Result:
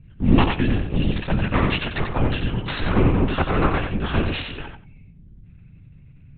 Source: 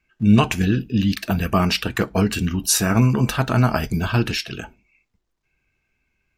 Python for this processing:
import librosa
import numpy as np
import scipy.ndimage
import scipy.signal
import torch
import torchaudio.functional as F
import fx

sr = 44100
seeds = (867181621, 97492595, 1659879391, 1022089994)

y = fx.lower_of_two(x, sr, delay_ms=5.4)
y = fx.add_hum(y, sr, base_hz=50, snr_db=24)
y = fx.lpc_vocoder(y, sr, seeds[0], excitation='whisper', order=10)
y = fx.echo_feedback(y, sr, ms=90, feedback_pct=16, wet_db=-6.0)